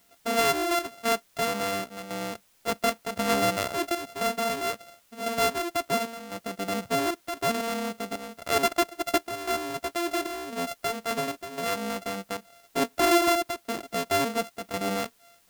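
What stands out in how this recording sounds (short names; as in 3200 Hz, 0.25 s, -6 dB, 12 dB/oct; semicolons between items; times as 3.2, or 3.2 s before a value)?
a buzz of ramps at a fixed pitch in blocks of 64 samples; chopped level 0.95 Hz, depth 60%, duty 75%; a quantiser's noise floor 10-bit, dither triangular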